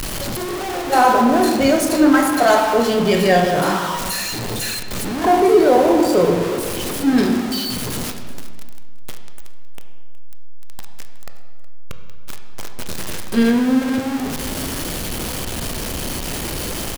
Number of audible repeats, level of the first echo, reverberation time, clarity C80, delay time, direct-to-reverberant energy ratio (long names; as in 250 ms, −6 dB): 1, −19.0 dB, 1.6 s, 8.0 dB, 367 ms, 5.0 dB